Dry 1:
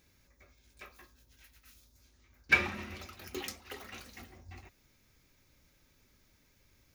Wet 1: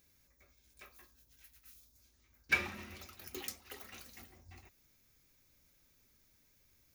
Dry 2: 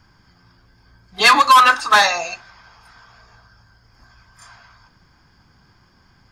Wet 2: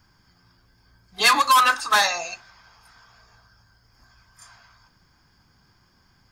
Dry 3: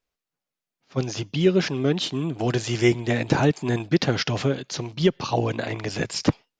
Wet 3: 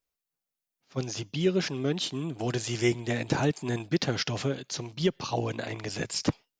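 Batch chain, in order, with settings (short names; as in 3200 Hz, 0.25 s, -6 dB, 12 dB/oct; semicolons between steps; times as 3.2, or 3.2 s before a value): high shelf 7200 Hz +11.5 dB; gain -6.5 dB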